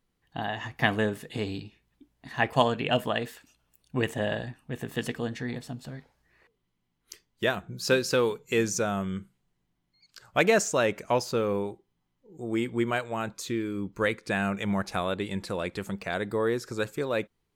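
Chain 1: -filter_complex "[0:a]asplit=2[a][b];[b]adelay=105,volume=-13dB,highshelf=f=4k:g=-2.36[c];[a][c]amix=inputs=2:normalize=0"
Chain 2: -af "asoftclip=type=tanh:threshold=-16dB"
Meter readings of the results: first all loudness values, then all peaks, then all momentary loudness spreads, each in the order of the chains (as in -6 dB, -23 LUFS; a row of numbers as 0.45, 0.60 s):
-29.0, -30.5 LUFS; -6.5, -16.0 dBFS; 13, 11 LU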